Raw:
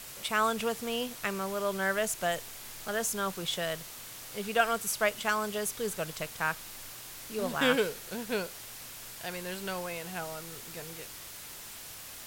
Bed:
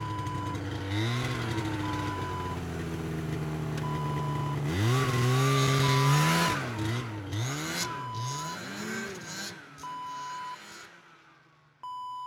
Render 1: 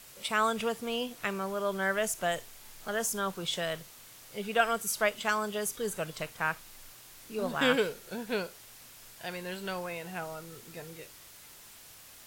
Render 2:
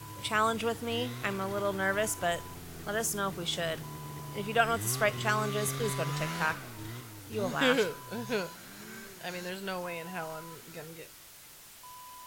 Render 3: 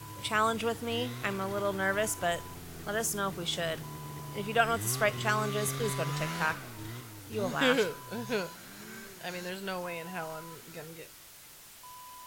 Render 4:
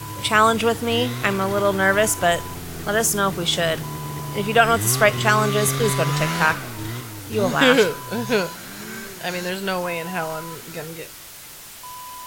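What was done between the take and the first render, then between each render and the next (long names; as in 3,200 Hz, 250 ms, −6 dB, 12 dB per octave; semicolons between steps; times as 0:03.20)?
noise reduction from a noise print 7 dB
mix in bed −11.5 dB
no processing that can be heard
level +12 dB; brickwall limiter −3 dBFS, peak gain reduction 2.5 dB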